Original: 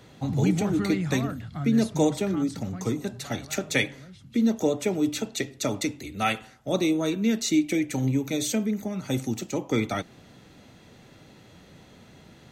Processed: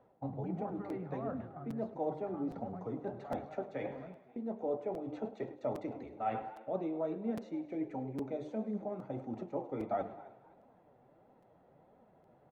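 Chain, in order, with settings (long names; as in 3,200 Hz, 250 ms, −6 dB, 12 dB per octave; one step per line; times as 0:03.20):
reversed playback
downward compressor 5 to 1, threshold −36 dBFS, peak gain reduction 17 dB
reversed playback
low-shelf EQ 440 Hz −11.5 dB
noise gate −53 dBFS, range −13 dB
mains-hum notches 50/100/150/200/250/300/350/400/450 Hz
on a send: echo with shifted repeats 263 ms, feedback 31%, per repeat +110 Hz, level −17.5 dB
on the sum: flanger 1.5 Hz, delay 3.6 ms, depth 4.9 ms, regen +55%
low-pass with resonance 730 Hz, resonance Q 1.8
feedback echo with a high-pass in the loop 103 ms, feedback 59%, high-pass 360 Hz, level −15 dB
regular buffer underruns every 0.81 s, samples 256, repeat, from 0:00.89
level +10 dB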